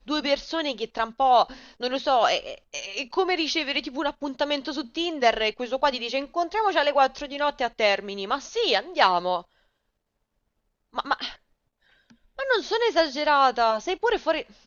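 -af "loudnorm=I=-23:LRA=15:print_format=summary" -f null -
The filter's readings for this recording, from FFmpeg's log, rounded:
Input Integrated:    -24.3 LUFS
Input True Peak:      -3.4 dBTP
Input LRA:             4.7 LU
Input Threshold:     -34.9 LUFS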